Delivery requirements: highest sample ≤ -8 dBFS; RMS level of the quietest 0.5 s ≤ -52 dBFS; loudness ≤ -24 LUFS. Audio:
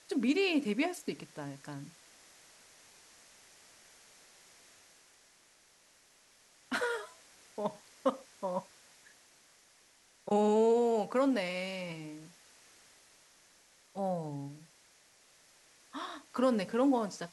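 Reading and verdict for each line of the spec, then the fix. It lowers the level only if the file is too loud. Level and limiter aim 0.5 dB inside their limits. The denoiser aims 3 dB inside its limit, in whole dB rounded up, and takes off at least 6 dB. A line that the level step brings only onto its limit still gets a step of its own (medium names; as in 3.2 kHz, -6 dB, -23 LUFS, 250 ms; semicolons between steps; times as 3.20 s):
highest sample -17.0 dBFS: pass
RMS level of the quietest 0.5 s -65 dBFS: pass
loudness -33.0 LUFS: pass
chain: none needed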